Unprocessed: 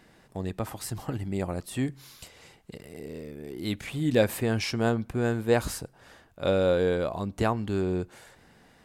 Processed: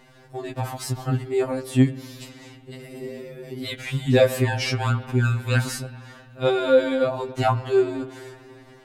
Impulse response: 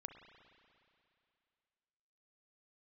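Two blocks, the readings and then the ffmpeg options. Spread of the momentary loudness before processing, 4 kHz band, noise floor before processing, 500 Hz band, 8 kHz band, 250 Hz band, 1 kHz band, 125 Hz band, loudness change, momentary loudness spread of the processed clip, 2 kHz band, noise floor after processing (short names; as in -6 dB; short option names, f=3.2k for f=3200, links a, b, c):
19 LU, +5.5 dB, -59 dBFS, +5.0 dB, +3.0 dB, +3.5 dB, +6.5 dB, +7.5 dB, +5.5 dB, 21 LU, +5.5 dB, -50 dBFS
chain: -filter_complex "[0:a]asplit=2[a][b];[1:a]atrim=start_sample=2205,lowpass=7.9k[c];[b][c]afir=irnorm=-1:irlink=0,volume=1dB[d];[a][d]amix=inputs=2:normalize=0,afftfilt=real='re*2.45*eq(mod(b,6),0)':imag='im*2.45*eq(mod(b,6),0)':win_size=2048:overlap=0.75,volume=4.5dB"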